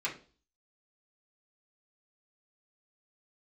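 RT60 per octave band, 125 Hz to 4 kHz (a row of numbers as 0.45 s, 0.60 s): 0.45 s, 0.50 s, 0.45 s, 0.35 s, 0.30 s, 0.40 s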